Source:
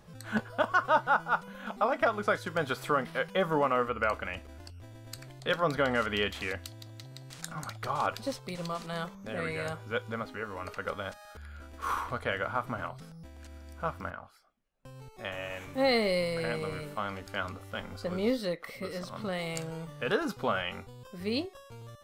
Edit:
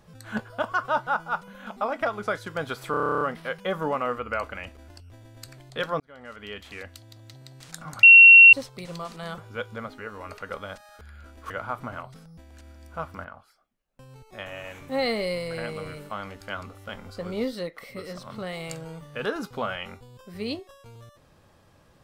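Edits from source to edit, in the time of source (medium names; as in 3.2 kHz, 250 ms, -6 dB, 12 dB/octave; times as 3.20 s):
2.91 s: stutter 0.03 s, 11 plays
5.70–7.06 s: fade in
7.73–8.23 s: bleep 2.73 kHz -6.5 dBFS
9.08–9.74 s: delete
11.86–12.36 s: delete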